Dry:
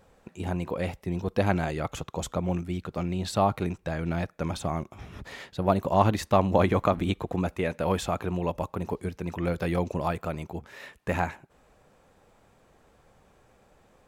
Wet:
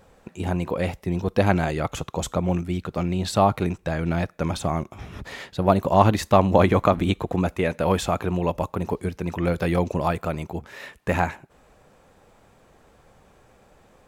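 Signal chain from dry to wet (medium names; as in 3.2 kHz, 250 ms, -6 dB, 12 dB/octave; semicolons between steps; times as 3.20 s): on a send: differentiator + reverberation RT60 0.50 s, pre-delay 4 ms, DRR 31.5 dB; on the sum: trim +5 dB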